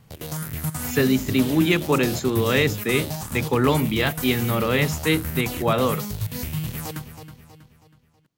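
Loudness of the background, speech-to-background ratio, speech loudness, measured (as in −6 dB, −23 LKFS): −29.5 LKFS, 7.0 dB, −22.5 LKFS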